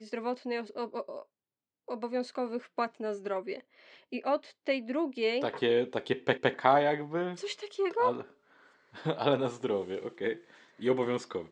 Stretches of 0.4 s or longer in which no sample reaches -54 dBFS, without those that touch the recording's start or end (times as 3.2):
1.23–1.88